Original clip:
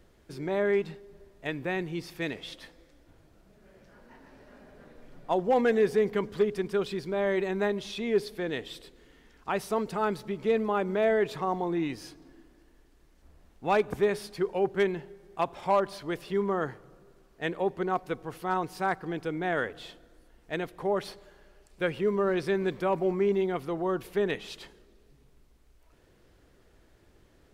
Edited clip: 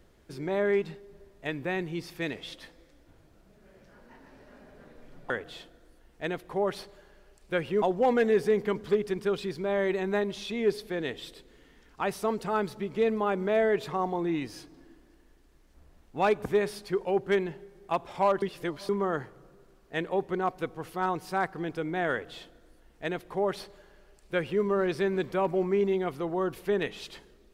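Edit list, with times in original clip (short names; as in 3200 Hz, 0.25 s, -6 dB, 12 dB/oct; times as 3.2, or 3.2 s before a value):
15.9–16.37 reverse
19.59–22.11 copy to 5.3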